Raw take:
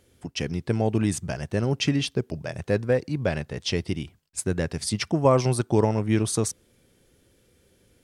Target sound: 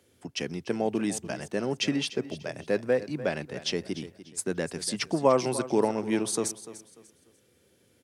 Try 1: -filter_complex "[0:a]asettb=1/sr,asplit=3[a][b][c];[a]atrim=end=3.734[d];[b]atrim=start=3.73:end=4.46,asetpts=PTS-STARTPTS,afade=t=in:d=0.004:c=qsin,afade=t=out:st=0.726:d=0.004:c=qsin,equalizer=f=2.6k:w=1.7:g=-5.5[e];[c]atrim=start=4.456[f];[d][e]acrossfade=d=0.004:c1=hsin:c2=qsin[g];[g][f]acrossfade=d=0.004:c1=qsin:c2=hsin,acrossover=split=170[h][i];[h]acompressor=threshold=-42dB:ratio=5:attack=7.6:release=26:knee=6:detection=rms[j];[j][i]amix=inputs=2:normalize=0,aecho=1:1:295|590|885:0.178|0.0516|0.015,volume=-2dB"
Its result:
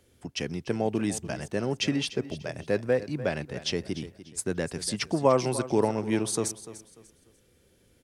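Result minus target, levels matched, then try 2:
125 Hz band +4.0 dB
-filter_complex "[0:a]asettb=1/sr,asplit=3[a][b][c];[a]atrim=end=3.734[d];[b]atrim=start=3.73:end=4.46,asetpts=PTS-STARTPTS,afade=t=in:d=0.004:c=qsin,afade=t=out:st=0.726:d=0.004:c=qsin,equalizer=f=2.6k:w=1.7:g=-5.5[e];[c]atrim=start=4.456[f];[d][e]acrossfade=d=0.004:c1=hsin:c2=qsin[g];[g][f]acrossfade=d=0.004:c1=qsin:c2=hsin,acrossover=split=170[h][i];[h]acompressor=threshold=-42dB:ratio=5:attack=7.6:release=26:knee=6:detection=rms,highpass=f=89:w=0.5412,highpass=f=89:w=1.3066[j];[j][i]amix=inputs=2:normalize=0,aecho=1:1:295|590|885:0.178|0.0516|0.015,volume=-2dB"

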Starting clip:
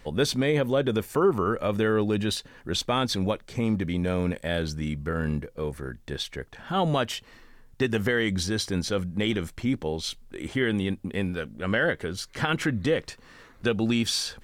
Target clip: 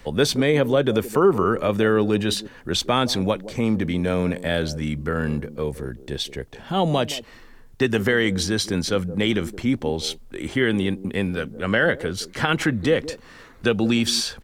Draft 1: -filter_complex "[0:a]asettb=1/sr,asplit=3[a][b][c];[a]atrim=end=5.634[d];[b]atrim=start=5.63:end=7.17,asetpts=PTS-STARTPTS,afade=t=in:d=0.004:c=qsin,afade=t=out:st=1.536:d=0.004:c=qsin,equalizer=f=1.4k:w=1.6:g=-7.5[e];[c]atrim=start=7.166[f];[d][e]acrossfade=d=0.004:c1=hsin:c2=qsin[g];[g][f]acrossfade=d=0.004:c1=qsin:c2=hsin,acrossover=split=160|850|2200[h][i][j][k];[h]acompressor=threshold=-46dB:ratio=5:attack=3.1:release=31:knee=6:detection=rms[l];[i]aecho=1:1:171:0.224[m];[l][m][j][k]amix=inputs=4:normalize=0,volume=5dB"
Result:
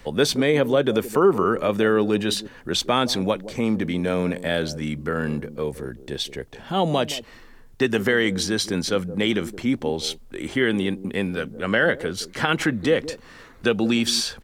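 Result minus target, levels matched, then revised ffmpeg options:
compressor: peak gain reduction +9.5 dB
-filter_complex "[0:a]asettb=1/sr,asplit=3[a][b][c];[a]atrim=end=5.634[d];[b]atrim=start=5.63:end=7.17,asetpts=PTS-STARTPTS,afade=t=in:d=0.004:c=qsin,afade=t=out:st=1.536:d=0.004:c=qsin,equalizer=f=1.4k:w=1.6:g=-7.5[e];[c]atrim=start=7.166[f];[d][e]acrossfade=d=0.004:c1=hsin:c2=qsin[g];[g][f]acrossfade=d=0.004:c1=qsin:c2=hsin,acrossover=split=160|850|2200[h][i][j][k];[h]acompressor=threshold=-34dB:ratio=5:attack=3.1:release=31:knee=6:detection=rms[l];[i]aecho=1:1:171:0.224[m];[l][m][j][k]amix=inputs=4:normalize=0,volume=5dB"

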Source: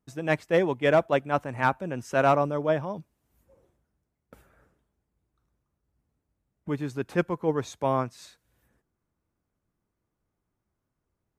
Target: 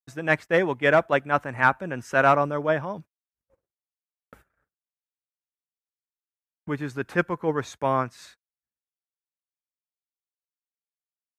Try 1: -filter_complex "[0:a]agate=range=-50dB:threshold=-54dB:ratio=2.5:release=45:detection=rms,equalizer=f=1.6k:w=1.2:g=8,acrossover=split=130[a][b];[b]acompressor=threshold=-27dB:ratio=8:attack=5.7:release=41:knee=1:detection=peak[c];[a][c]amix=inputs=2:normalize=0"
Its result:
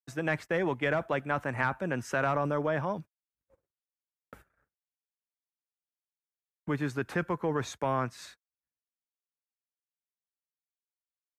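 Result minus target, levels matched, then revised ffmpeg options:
compressor: peak gain reduction +12.5 dB
-af "agate=range=-50dB:threshold=-54dB:ratio=2.5:release=45:detection=rms,equalizer=f=1.6k:w=1.2:g=8"

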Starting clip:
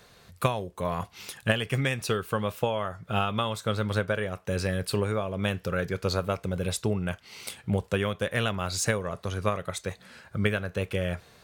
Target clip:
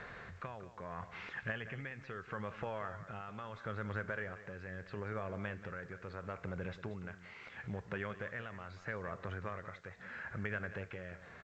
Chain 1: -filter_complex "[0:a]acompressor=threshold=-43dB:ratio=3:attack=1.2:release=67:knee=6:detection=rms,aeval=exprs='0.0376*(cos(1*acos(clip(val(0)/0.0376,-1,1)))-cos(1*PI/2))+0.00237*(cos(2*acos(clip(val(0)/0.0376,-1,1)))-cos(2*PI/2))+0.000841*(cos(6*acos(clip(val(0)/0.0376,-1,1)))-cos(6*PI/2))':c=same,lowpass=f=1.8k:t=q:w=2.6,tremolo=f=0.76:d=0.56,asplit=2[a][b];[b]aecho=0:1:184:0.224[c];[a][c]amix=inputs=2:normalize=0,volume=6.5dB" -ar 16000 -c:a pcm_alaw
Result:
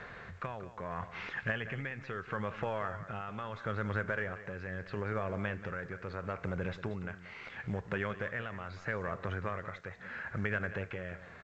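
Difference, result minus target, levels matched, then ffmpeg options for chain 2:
compressor: peak gain reduction -5.5 dB
-filter_complex "[0:a]acompressor=threshold=-51dB:ratio=3:attack=1.2:release=67:knee=6:detection=rms,aeval=exprs='0.0376*(cos(1*acos(clip(val(0)/0.0376,-1,1)))-cos(1*PI/2))+0.00237*(cos(2*acos(clip(val(0)/0.0376,-1,1)))-cos(2*PI/2))+0.000841*(cos(6*acos(clip(val(0)/0.0376,-1,1)))-cos(6*PI/2))':c=same,lowpass=f=1.8k:t=q:w=2.6,tremolo=f=0.76:d=0.56,asplit=2[a][b];[b]aecho=0:1:184:0.224[c];[a][c]amix=inputs=2:normalize=0,volume=6.5dB" -ar 16000 -c:a pcm_alaw

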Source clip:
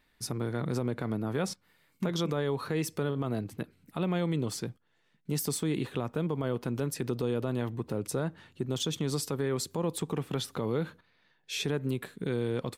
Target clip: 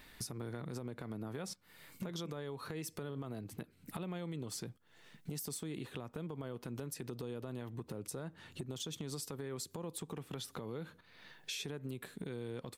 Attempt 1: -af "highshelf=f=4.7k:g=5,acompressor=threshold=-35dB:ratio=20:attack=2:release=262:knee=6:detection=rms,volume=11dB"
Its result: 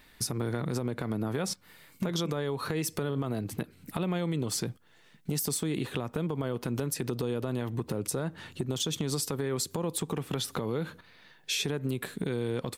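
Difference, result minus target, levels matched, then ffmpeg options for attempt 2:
compressor: peak gain reduction -11.5 dB
-af "highshelf=f=4.7k:g=5,acompressor=threshold=-47dB:ratio=20:attack=2:release=262:knee=6:detection=rms,volume=11dB"

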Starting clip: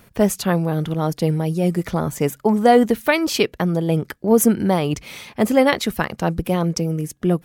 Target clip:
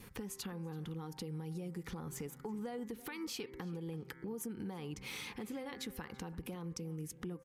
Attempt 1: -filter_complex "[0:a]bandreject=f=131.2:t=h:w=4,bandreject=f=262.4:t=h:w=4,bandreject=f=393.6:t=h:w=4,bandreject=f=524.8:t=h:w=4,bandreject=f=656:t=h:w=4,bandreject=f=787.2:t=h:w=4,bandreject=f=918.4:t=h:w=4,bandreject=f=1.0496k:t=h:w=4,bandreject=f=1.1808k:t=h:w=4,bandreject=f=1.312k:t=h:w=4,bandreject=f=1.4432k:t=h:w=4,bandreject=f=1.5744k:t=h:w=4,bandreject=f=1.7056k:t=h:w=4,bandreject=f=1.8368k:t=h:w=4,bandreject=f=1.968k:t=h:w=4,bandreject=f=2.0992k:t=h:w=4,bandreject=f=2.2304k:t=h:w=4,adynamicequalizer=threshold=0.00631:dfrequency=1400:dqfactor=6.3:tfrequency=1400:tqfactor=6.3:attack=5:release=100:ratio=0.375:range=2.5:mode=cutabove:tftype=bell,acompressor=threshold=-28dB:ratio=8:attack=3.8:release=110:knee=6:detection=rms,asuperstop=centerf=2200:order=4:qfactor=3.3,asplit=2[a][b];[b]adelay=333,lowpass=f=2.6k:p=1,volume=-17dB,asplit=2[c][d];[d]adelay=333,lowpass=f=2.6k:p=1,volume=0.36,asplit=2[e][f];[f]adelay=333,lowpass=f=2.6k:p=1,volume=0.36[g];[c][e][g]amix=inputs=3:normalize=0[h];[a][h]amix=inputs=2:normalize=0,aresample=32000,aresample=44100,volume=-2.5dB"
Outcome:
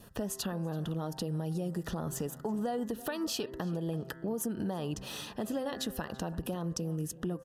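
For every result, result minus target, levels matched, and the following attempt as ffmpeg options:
compressor: peak gain reduction -8 dB; 2000 Hz band -4.5 dB
-filter_complex "[0:a]bandreject=f=131.2:t=h:w=4,bandreject=f=262.4:t=h:w=4,bandreject=f=393.6:t=h:w=4,bandreject=f=524.8:t=h:w=4,bandreject=f=656:t=h:w=4,bandreject=f=787.2:t=h:w=4,bandreject=f=918.4:t=h:w=4,bandreject=f=1.0496k:t=h:w=4,bandreject=f=1.1808k:t=h:w=4,bandreject=f=1.312k:t=h:w=4,bandreject=f=1.4432k:t=h:w=4,bandreject=f=1.5744k:t=h:w=4,bandreject=f=1.7056k:t=h:w=4,bandreject=f=1.8368k:t=h:w=4,bandreject=f=1.968k:t=h:w=4,bandreject=f=2.0992k:t=h:w=4,bandreject=f=2.2304k:t=h:w=4,adynamicequalizer=threshold=0.00631:dfrequency=1400:dqfactor=6.3:tfrequency=1400:tqfactor=6.3:attack=5:release=100:ratio=0.375:range=2.5:mode=cutabove:tftype=bell,acompressor=threshold=-37dB:ratio=8:attack=3.8:release=110:knee=6:detection=rms,asuperstop=centerf=2200:order=4:qfactor=3.3,asplit=2[a][b];[b]adelay=333,lowpass=f=2.6k:p=1,volume=-17dB,asplit=2[c][d];[d]adelay=333,lowpass=f=2.6k:p=1,volume=0.36,asplit=2[e][f];[f]adelay=333,lowpass=f=2.6k:p=1,volume=0.36[g];[c][e][g]amix=inputs=3:normalize=0[h];[a][h]amix=inputs=2:normalize=0,aresample=32000,aresample=44100,volume=-2.5dB"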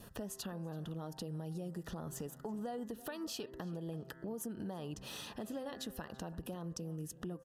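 2000 Hz band -4.0 dB
-filter_complex "[0:a]bandreject=f=131.2:t=h:w=4,bandreject=f=262.4:t=h:w=4,bandreject=f=393.6:t=h:w=4,bandreject=f=524.8:t=h:w=4,bandreject=f=656:t=h:w=4,bandreject=f=787.2:t=h:w=4,bandreject=f=918.4:t=h:w=4,bandreject=f=1.0496k:t=h:w=4,bandreject=f=1.1808k:t=h:w=4,bandreject=f=1.312k:t=h:w=4,bandreject=f=1.4432k:t=h:w=4,bandreject=f=1.5744k:t=h:w=4,bandreject=f=1.7056k:t=h:w=4,bandreject=f=1.8368k:t=h:w=4,bandreject=f=1.968k:t=h:w=4,bandreject=f=2.0992k:t=h:w=4,bandreject=f=2.2304k:t=h:w=4,adynamicequalizer=threshold=0.00631:dfrequency=1400:dqfactor=6.3:tfrequency=1400:tqfactor=6.3:attack=5:release=100:ratio=0.375:range=2.5:mode=cutabove:tftype=bell,acompressor=threshold=-37dB:ratio=8:attack=3.8:release=110:knee=6:detection=rms,asuperstop=centerf=630:order=4:qfactor=3.3,asplit=2[a][b];[b]adelay=333,lowpass=f=2.6k:p=1,volume=-17dB,asplit=2[c][d];[d]adelay=333,lowpass=f=2.6k:p=1,volume=0.36,asplit=2[e][f];[f]adelay=333,lowpass=f=2.6k:p=1,volume=0.36[g];[c][e][g]amix=inputs=3:normalize=0[h];[a][h]amix=inputs=2:normalize=0,aresample=32000,aresample=44100,volume=-2.5dB"

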